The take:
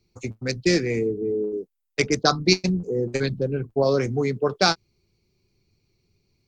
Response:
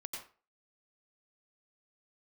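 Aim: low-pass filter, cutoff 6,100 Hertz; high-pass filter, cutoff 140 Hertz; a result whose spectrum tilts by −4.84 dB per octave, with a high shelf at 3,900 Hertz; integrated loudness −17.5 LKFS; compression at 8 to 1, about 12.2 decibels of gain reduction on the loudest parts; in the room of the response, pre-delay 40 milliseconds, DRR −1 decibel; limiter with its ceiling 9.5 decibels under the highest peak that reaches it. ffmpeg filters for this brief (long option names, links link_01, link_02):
-filter_complex "[0:a]highpass=140,lowpass=6100,highshelf=frequency=3900:gain=5,acompressor=threshold=-26dB:ratio=8,alimiter=limit=-21.5dB:level=0:latency=1,asplit=2[link_01][link_02];[1:a]atrim=start_sample=2205,adelay=40[link_03];[link_02][link_03]afir=irnorm=-1:irlink=0,volume=2.5dB[link_04];[link_01][link_04]amix=inputs=2:normalize=0,volume=12dB"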